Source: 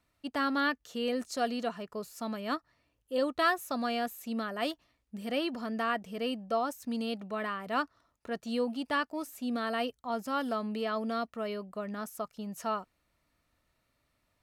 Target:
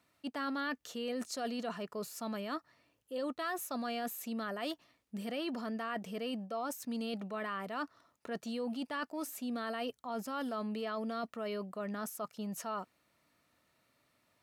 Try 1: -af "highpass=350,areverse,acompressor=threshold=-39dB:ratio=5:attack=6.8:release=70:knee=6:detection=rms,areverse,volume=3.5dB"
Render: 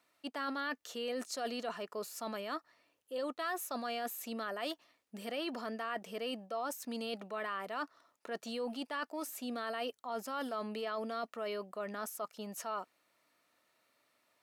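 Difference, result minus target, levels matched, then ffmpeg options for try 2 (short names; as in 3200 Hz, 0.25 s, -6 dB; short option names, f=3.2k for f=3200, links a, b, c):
125 Hz band -6.5 dB
-af "highpass=140,areverse,acompressor=threshold=-39dB:ratio=5:attack=6.8:release=70:knee=6:detection=rms,areverse,volume=3.5dB"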